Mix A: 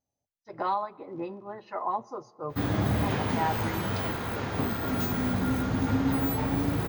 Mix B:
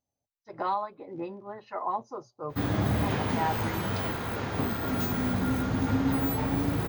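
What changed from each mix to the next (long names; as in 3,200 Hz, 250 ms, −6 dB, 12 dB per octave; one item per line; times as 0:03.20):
reverb: off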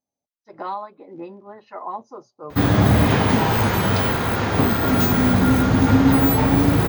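speech: add low shelf with overshoot 150 Hz −7.5 dB, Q 1.5
background +11.5 dB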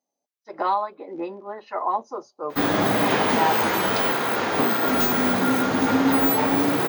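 speech +6.5 dB
master: add high-pass filter 310 Hz 12 dB per octave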